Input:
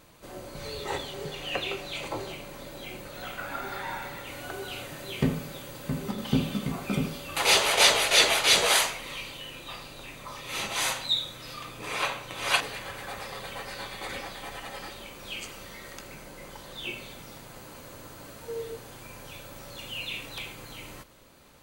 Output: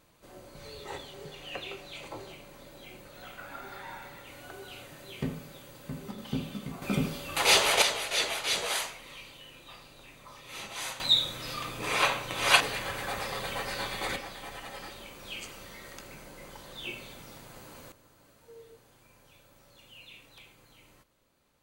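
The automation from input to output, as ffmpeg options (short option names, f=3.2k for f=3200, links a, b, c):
-af "asetnsamples=n=441:p=0,asendcmd='6.82 volume volume -0.5dB;7.82 volume volume -9dB;11 volume volume 3.5dB;14.16 volume volume -3dB;17.92 volume volume -15.5dB',volume=-8dB"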